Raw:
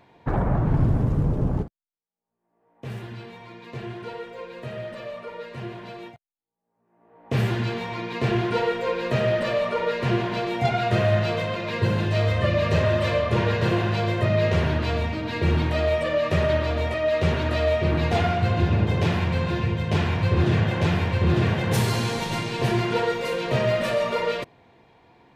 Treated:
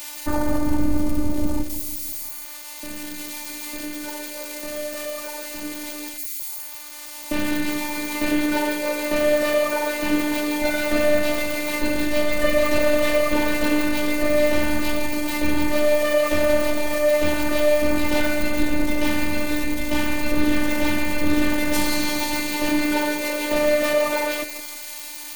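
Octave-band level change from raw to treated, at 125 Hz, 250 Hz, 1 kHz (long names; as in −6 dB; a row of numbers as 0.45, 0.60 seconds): −14.0, +5.0, 0.0 decibels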